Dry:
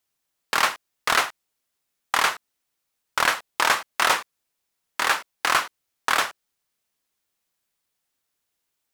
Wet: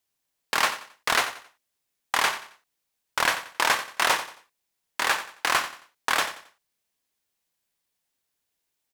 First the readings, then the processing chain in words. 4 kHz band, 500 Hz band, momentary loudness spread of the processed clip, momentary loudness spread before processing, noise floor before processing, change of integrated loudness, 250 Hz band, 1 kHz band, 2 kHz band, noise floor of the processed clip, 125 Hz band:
-1.5 dB, -1.5 dB, 12 LU, 9 LU, -79 dBFS, -2.0 dB, -1.5 dB, -2.5 dB, -2.0 dB, -80 dBFS, -1.0 dB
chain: peaking EQ 1.3 kHz -4.5 dB 0.27 oct; on a send: feedback delay 90 ms, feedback 32%, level -13 dB; on the sum: trim -1.5 dB

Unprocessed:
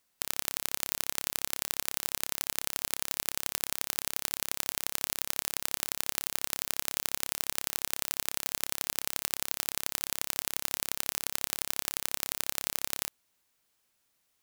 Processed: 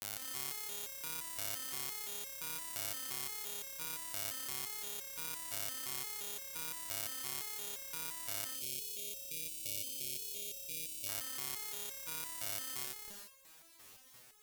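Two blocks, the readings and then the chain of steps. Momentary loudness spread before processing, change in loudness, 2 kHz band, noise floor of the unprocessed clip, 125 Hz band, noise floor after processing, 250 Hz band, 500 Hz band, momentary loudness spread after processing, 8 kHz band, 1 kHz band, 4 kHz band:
1 LU, -7.5 dB, -9.0 dB, -75 dBFS, -7.0 dB, -60 dBFS, -9.5 dB, -7.5 dB, 3 LU, -7.5 dB, -8.5 dB, -8.0 dB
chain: on a send: reverse echo 256 ms -3 dB; on the sum: expander -59 dBFS; bass shelf 350 Hz +2.5 dB; reverse; upward compressor, threshold -38 dBFS; reverse; peak limiter -12 dBFS, peak gain reduction 11 dB; one-sided clip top -20.5 dBFS; spectral selection erased 8.53–11.07 s, 630–2200 Hz; resonator arpeggio 5.8 Hz 98–540 Hz; trim +16 dB

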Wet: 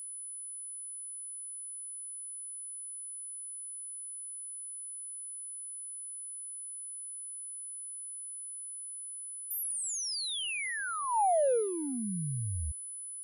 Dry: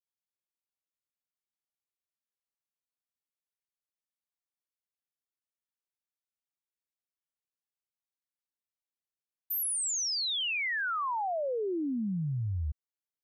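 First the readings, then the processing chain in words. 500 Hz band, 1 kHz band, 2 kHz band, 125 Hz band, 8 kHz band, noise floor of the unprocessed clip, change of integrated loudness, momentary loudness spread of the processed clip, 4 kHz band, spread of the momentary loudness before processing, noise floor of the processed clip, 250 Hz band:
+4.0 dB, +2.5 dB, -4.5 dB, no reading, +3.5 dB, under -85 dBFS, -5.0 dB, 8 LU, -4.5 dB, 6 LU, -43 dBFS, -3.5 dB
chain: local Wiener filter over 41 samples; high-order bell 640 Hz +10 dB 1.2 oct; whistle 10 kHz -37 dBFS; trim -3 dB

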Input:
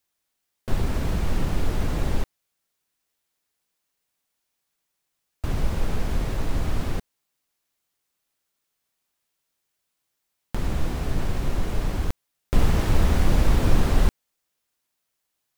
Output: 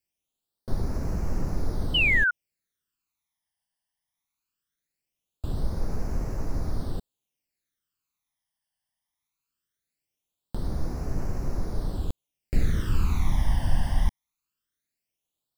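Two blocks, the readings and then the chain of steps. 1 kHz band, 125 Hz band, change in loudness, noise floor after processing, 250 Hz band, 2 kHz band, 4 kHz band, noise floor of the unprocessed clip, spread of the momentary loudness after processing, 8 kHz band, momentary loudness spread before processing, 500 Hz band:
-6.0 dB, -4.0 dB, -2.0 dB, under -85 dBFS, -5.5 dB, +8.5 dB, +4.0 dB, -79 dBFS, 15 LU, -7.5 dB, 11 LU, -7.0 dB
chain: phase shifter stages 12, 0.2 Hz, lowest notch 410–3300 Hz; painted sound fall, 1.94–2.31 s, 1.4–3.1 kHz -17 dBFS; trim -5 dB

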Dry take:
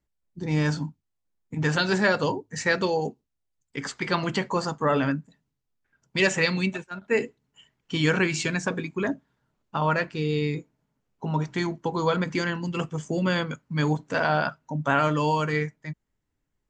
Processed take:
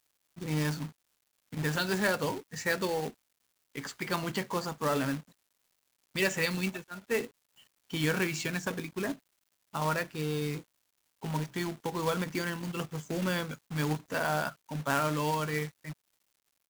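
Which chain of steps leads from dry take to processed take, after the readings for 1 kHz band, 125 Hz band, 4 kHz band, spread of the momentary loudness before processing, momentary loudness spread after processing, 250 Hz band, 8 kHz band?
-6.5 dB, -7.0 dB, -5.5 dB, 12 LU, 12 LU, -7.0 dB, -2.0 dB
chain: crackle 500 per s -55 dBFS; companded quantiser 4-bit; trim -7 dB

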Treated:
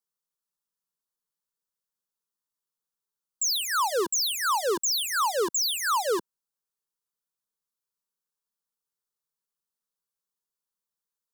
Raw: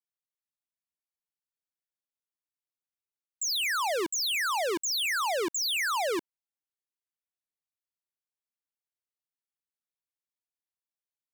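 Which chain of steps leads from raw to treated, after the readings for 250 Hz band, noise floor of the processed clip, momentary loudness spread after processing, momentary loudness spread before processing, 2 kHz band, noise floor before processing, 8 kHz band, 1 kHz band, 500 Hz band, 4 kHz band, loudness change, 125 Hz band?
0.0 dB, under -85 dBFS, 2 LU, 3 LU, -2.0 dB, under -85 dBFS, +5.0 dB, +4.0 dB, +3.5 dB, +1.5 dB, +2.5 dB, no reading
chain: static phaser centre 450 Hz, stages 8; trim +6 dB

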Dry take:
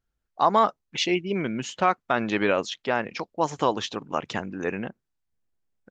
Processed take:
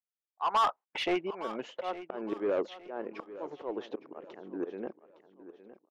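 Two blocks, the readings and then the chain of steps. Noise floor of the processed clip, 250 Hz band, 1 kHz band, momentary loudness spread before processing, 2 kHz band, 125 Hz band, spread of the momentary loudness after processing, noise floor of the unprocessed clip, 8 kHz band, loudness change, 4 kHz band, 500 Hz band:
under -85 dBFS, -9.5 dB, -8.5 dB, 9 LU, -12.5 dB, -20.0 dB, 17 LU, -81 dBFS, under -15 dB, -8.5 dB, -10.0 dB, -8.0 dB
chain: gate -41 dBFS, range -35 dB; band-pass sweep 1 kHz -> 370 Hz, 0.59–2.28 s; slow attack 486 ms; overdrive pedal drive 22 dB, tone 2.8 kHz, clips at -18.5 dBFS; on a send: feedback delay 862 ms, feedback 35%, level -15 dB

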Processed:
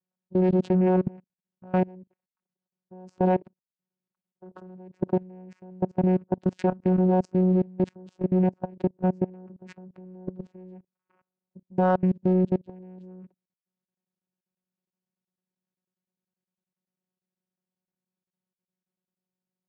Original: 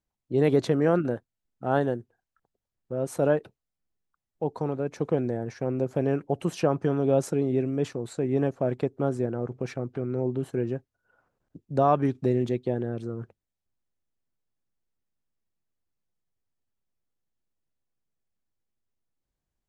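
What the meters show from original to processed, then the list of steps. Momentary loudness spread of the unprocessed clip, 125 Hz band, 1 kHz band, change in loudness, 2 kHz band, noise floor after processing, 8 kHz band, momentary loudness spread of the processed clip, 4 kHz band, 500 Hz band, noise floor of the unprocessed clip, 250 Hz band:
10 LU, +1.5 dB, 0.0 dB, +2.0 dB, -4.0 dB, under -85 dBFS, under -15 dB, 15 LU, no reading, -2.0 dB, under -85 dBFS, +3.0 dB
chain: vocoder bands 8, saw 184 Hz; in parallel at -9 dB: saturation -27 dBFS, distortion -9 dB; on the sum: level held to a coarse grid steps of 24 dB; trim +4 dB

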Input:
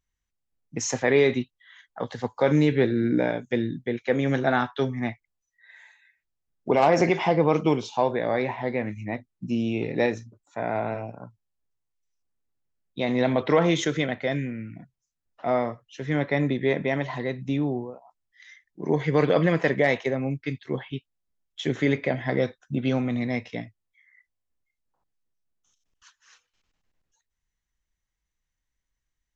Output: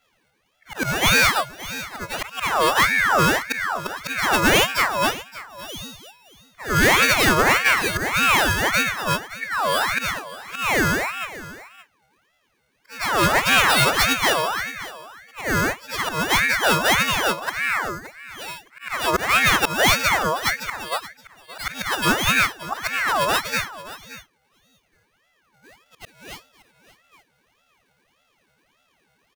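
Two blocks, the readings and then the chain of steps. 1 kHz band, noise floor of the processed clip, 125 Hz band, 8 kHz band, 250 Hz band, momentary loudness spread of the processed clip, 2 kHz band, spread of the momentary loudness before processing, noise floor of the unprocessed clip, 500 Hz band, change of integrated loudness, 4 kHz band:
+9.5 dB, -67 dBFS, -1.5 dB, no reading, -3.5 dB, 18 LU, +13.0 dB, 14 LU, -83 dBFS, -2.0 dB, +5.5 dB, +16.0 dB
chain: partials quantised in pitch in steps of 6 st; peaking EQ 110 Hz -11 dB 0.28 oct; slow attack 279 ms; in parallel at -2 dB: compression, threshold -29 dBFS, peak gain reduction 15 dB; on the sum: pre-echo 101 ms -13.5 dB; sample-rate reducer 6.4 kHz, jitter 0%; saturation -14 dBFS, distortion -15 dB; on a send: delay 572 ms -16.5 dB; on the sum: ring modulator with a swept carrier 1.4 kHz, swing 45%, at 1.7 Hz; trim +6.5 dB

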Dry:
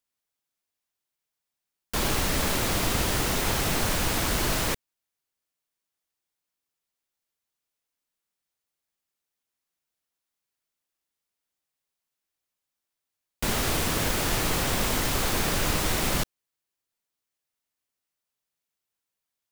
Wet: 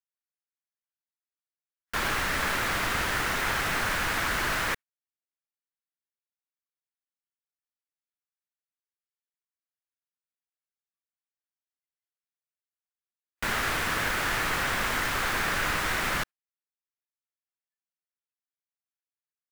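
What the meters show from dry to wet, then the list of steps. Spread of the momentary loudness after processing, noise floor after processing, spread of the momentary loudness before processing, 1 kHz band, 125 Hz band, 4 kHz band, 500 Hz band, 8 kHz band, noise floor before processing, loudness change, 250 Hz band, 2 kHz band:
4 LU, under -85 dBFS, 4 LU, +1.5 dB, -8.0 dB, -3.0 dB, -5.0 dB, -6.5 dB, under -85 dBFS, -1.5 dB, -7.0 dB, +5.0 dB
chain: spectral noise reduction 18 dB; peaking EQ 1.6 kHz +14.5 dB 1.7 oct; trim -8 dB

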